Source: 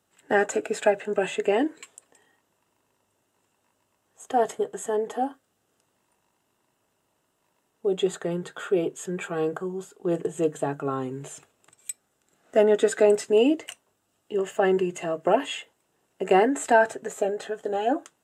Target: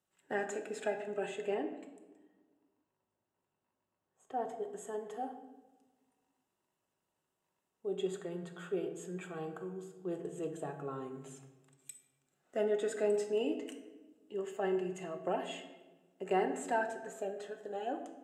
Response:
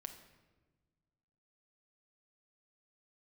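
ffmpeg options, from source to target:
-filter_complex "[0:a]asettb=1/sr,asplit=3[a][b][c];[a]atrim=end=1.544[d];[b]atrim=start=1.54:end=4.64,asetpts=PTS-STARTPTS,afade=t=in:d=0.004:c=qsin,afade=t=out:st=3.096:d=0.004:c=qsin,highshelf=f=2.6k:g=-11[e];[c]atrim=start=4.636[f];[d][e]acrossfade=d=0.004:c1=hsin:c2=qsin[g];[g][f]acrossfade=d=0.004:c1=qsin:c2=hsin[h];[1:a]atrim=start_sample=2205,asetrate=48510,aresample=44100[i];[h][i]afir=irnorm=-1:irlink=0,volume=-8dB"

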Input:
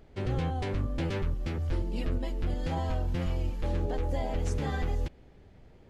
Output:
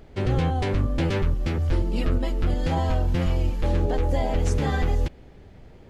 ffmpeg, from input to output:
-filter_complex "[0:a]asettb=1/sr,asplit=3[a][b][c];[a]atrim=end=1.854[d];[b]atrim=start=1.85:end=2.51,asetpts=PTS-STARTPTS,afade=t=in:d=0.004:c=qsin,afade=t=out:st=0.656:d=0.004:c=qsin,equalizer=f=1.3k:w=7.3:g=6.5[e];[c]atrim=start=2.506[f];[d][e]acrossfade=d=0.004:c1=hsin:c2=qsin[g];[g][f]acrossfade=d=0.004:c1=qsin:c2=hsin,volume=7.5dB"

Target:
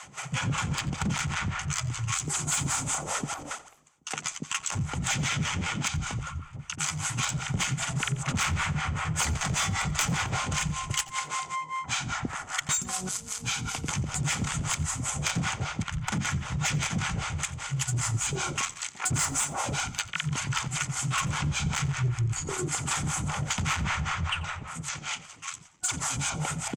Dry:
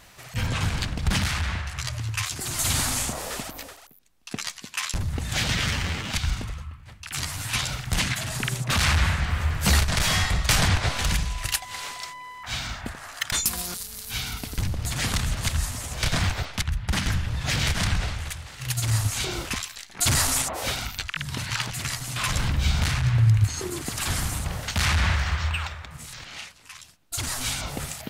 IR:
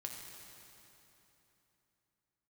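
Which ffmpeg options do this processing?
-filter_complex "[0:a]asetrate=46305,aresample=44100,superequalizer=9b=2:10b=3.55:13b=1.41:15b=2.24,acrossover=split=540[a][b];[a]aeval=exprs='val(0)*(1-1/2+1/2*cos(2*PI*5.1*n/s))':c=same[c];[b]aeval=exprs='val(0)*(1-1/2-1/2*cos(2*PI*5.1*n/s))':c=same[d];[c][d]amix=inputs=2:normalize=0,highpass=100,equalizer=f=150:t=q:w=4:g=9,equalizer=f=1.2k:t=q:w=4:g=-8,equalizer=f=2.3k:t=q:w=4:g=4,equalizer=f=4k:t=q:w=4:g=-9,lowpass=f=8.9k:w=0.5412,lowpass=f=8.9k:w=1.3066,acontrast=85,asoftclip=type=tanh:threshold=-9dB,acompressor=threshold=-28dB:ratio=3,asplit=5[e][f][g][h][i];[f]adelay=88,afreqshift=-59,volume=-20.5dB[j];[g]adelay=176,afreqshift=-118,volume=-25.7dB[k];[h]adelay=264,afreqshift=-177,volume=-30.9dB[l];[i]adelay=352,afreqshift=-236,volume=-36.1dB[m];[e][j][k][l][m]amix=inputs=5:normalize=0"

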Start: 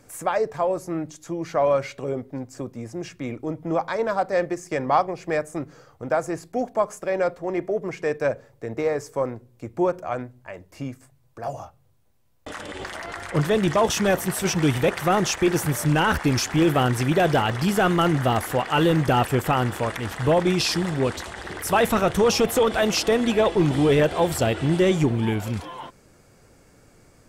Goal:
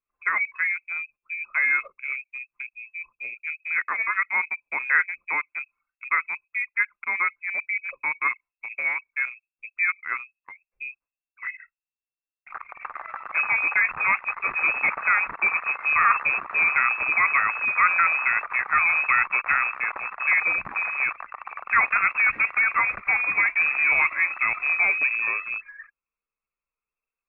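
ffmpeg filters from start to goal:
-af "lowpass=f=2.3k:t=q:w=0.5098,lowpass=f=2.3k:t=q:w=0.6013,lowpass=f=2.3k:t=q:w=0.9,lowpass=f=2.3k:t=q:w=2.563,afreqshift=-2700,equalizer=f=1.2k:t=o:w=0.61:g=11,anlmdn=100,volume=-4dB"

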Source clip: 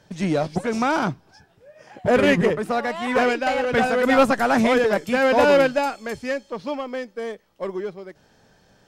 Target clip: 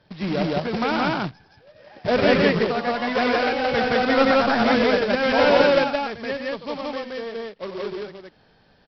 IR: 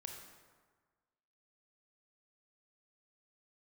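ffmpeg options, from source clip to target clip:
-af "aresample=11025,acrusher=bits=2:mode=log:mix=0:aa=0.000001,aresample=44100,aecho=1:1:93.29|172:0.355|1,volume=-4dB"

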